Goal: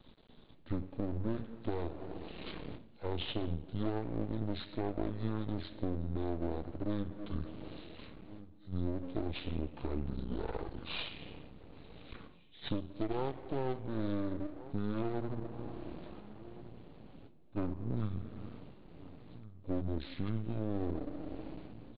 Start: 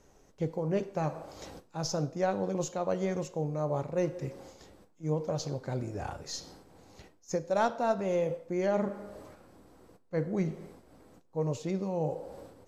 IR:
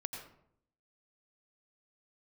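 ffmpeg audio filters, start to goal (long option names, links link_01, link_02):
-filter_complex "[0:a]asplit=2[link_01][link_02];[link_02]adelay=816.3,volume=-26dB,highshelf=frequency=4000:gain=-18.4[link_03];[link_01][link_03]amix=inputs=2:normalize=0,acompressor=threshold=-35dB:ratio=5,aresample=16000,aeval=exprs='max(val(0),0)':channel_layout=same,aresample=44100,asetrate=25442,aresample=44100,volume=5.5dB"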